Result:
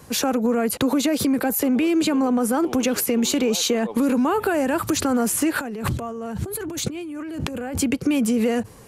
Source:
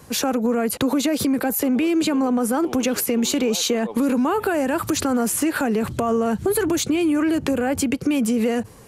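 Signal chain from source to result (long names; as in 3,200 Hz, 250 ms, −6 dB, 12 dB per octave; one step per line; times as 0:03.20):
0:05.58–0:07.78: compressor whose output falls as the input rises −29 dBFS, ratio −1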